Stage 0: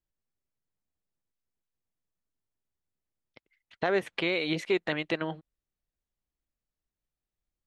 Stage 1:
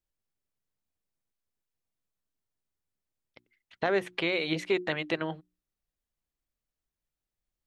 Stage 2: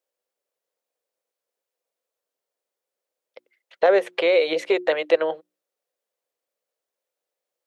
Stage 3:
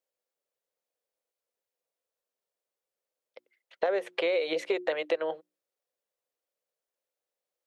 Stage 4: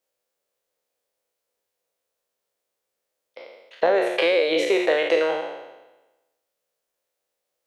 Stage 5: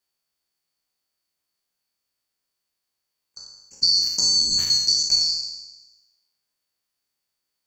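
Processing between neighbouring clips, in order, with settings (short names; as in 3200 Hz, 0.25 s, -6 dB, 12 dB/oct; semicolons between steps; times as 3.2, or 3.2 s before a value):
notches 60/120/180/240/300/360 Hz
resonant high-pass 510 Hz, resonance Q 4.9; gain +4 dB
compressor, threshold -19 dBFS, peak gain reduction 8 dB; gain -5 dB
spectral trails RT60 1.10 s; gain +6 dB
band-swap scrambler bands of 4000 Hz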